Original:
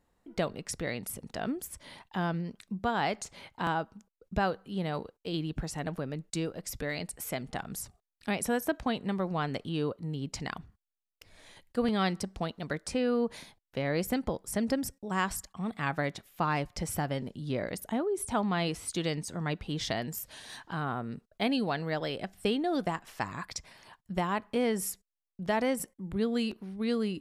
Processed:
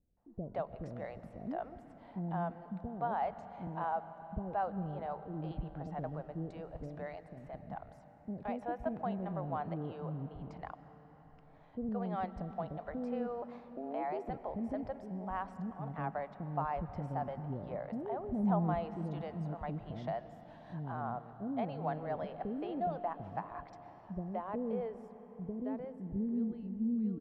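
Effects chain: in parallel at -2 dB: limiter -23 dBFS, peak gain reduction 7.5 dB; on the sum: low-pass sweep 710 Hz -> 280 Hz, 23.68–26.79; 6.95–7.62 level quantiser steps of 10 dB; 18.31–18.79 low shelf 240 Hz +11.5 dB; bands offset in time lows, highs 0.17 s, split 440 Hz; 13.42–14.29 frequency shift +130 Hz; passive tone stack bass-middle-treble 5-5-5; on a send at -12 dB: reverb RT60 5.1 s, pre-delay 85 ms; on the sum: gain +6 dB

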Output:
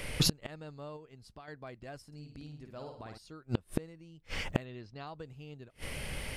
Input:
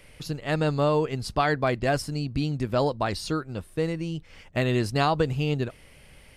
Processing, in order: 0.96–1.48 compressor 4:1, threshold -26 dBFS, peak gain reduction 7.5 dB; 4.65–5.07 LPF 5300 Hz 24 dB/oct; flipped gate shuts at -26 dBFS, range -34 dB; 2.07–3.18 flutter echo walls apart 9.2 m, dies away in 0.57 s; gain +12 dB

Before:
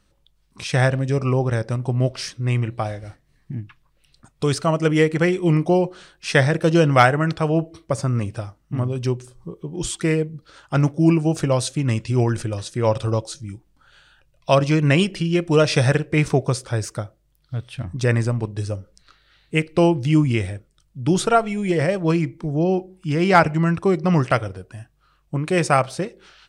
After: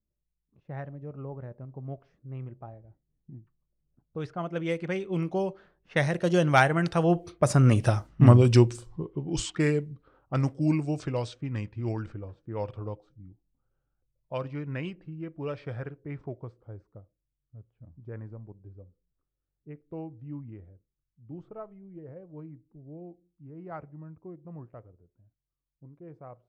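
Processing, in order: Doppler pass-by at 8.17, 21 m/s, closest 6.5 m; low-pass opened by the level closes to 420 Hz, open at -32 dBFS; gain +8.5 dB

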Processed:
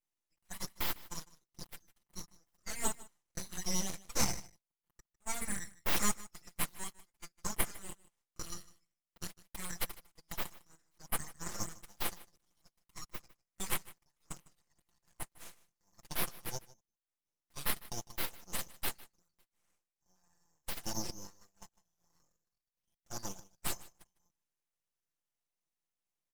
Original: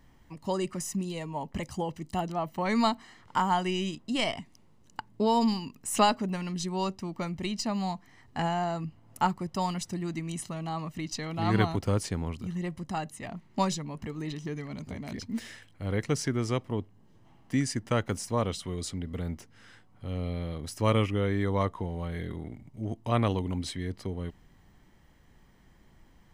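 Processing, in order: steep high-pass 2400 Hz 72 dB/oct; gate -47 dBFS, range -22 dB; comb 5.8 ms, depth 97%; full-wave rectifier; echo 0.153 s -20 dB; gain +3 dB

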